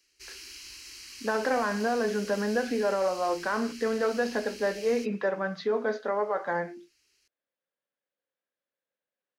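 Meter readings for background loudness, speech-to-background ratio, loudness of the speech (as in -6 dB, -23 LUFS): -43.0 LUFS, 14.0 dB, -29.0 LUFS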